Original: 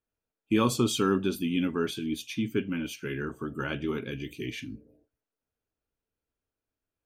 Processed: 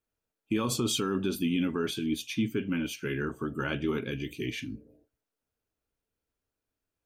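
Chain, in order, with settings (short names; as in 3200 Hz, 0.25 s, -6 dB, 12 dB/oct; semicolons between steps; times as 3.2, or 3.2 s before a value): limiter -20.5 dBFS, peak gain reduction 9 dB; gain +1.5 dB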